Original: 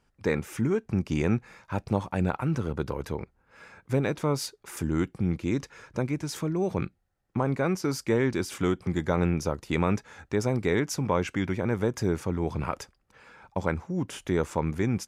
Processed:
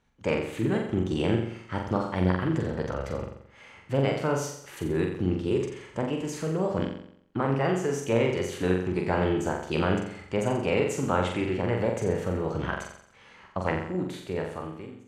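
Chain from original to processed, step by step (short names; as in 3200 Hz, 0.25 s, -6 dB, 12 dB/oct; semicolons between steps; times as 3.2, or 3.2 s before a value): ending faded out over 1.28 s; LPF 5400 Hz 12 dB/oct; formant shift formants +4 st; on a send: flutter echo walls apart 7.5 m, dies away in 0.67 s; on the sum: gain -1.5 dB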